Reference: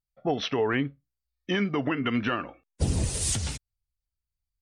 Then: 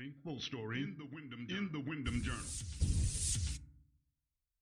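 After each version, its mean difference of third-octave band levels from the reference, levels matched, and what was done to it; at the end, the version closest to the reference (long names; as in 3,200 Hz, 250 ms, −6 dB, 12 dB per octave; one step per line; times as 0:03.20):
6.5 dB: guitar amp tone stack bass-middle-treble 6-0-2
on a send: backwards echo 745 ms −7.5 dB
on the sum: feedback delay network reverb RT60 0.64 s, low-frequency decay 1.55×, high-frequency decay 0.35×, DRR 14 dB
level +5.5 dB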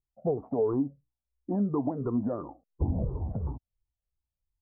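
11.0 dB: rippled gain that drifts along the octave scale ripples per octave 0.62, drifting −2.9 Hz, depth 14 dB
Butterworth low-pass 990 Hz 48 dB per octave
downward compressor 2 to 1, threshold −24 dBFS, peak gain reduction 4 dB
level −1.5 dB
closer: first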